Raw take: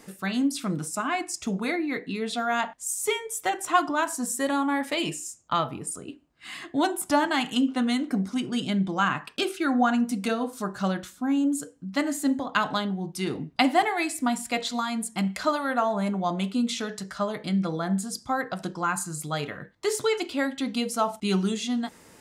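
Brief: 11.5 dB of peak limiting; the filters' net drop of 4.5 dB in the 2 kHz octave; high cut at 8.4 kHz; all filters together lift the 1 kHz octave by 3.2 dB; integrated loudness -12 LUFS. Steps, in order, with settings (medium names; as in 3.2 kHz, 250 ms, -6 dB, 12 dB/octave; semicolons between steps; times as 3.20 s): low-pass 8.4 kHz; peaking EQ 1 kHz +6.5 dB; peaking EQ 2 kHz -9 dB; trim +16.5 dB; peak limiter -1 dBFS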